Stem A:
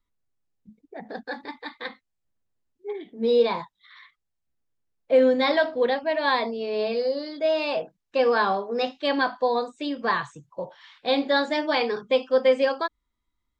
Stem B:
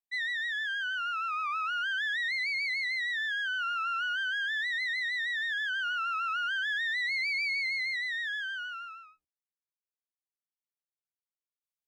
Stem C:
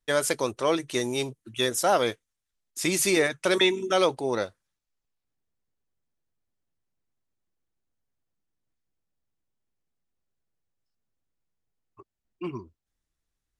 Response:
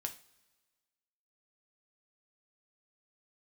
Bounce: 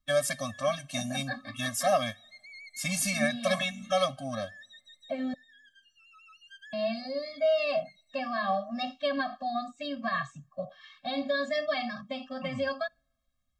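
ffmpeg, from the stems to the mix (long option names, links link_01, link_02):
-filter_complex "[0:a]alimiter=limit=-18dB:level=0:latency=1:release=75,volume=-0.5dB,asplit=3[link_01][link_02][link_03];[link_01]atrim=end=5.34,asetpts=PTS-STARTPTS,afade=type=out:start_time=5.336:duration=0.004:curve=hsin[link_04];[link_02]atrim=start=5.34:end=6.73,asetpts=PTS-STARTPTS,volume=0[link_05];[link_03]atrim=start=6.73,asetpts=PTS-STARTPTS,afade=type=in:duration=0.004:curve=hsin[link_06];[link_04][link_05][link_06]concat=n=3:v=0:a=1,asplit=3[link_07][link_08][link_09];[link_08]volume=-22.5dB[link_10];[1:a]bandpass=frequency=5600:width_type=q:width=0.6:csg=0,equalizer=frequency=8500:width=1.5:gain=5.5,volume=-12dB,asplit=2[link_11][link_12];[link_12]volume=-10dB[link_13];[2:a]volume=-2.5dB,asplit=2[link_14][link_15];[link_15]volume=-10dB[link_16];[link_09]apad=whole_len=523880[link_17];[link_11][link_17]sidechaincompress=threshold=-44dB:ratio=8:attack=16:release=763[link_18];[3:a]atrim=start_sample=2205[link_19];[link_10][link_13][link_16]amix=inputs=3:normalize=0[link_20];[link_20][link_19]afir=irnorm=-1:irlink=0[link_21];[link_07][link_18][link_14][link_21]amix=inputs=4:normalize=0,afftfilt=real='re*eq(mod(floor(b*sr/1024/260),2),0)':imag='im*eq(mod(floor(b*sr/1024/260),2),0)':win_size=1024:overlap=0.75"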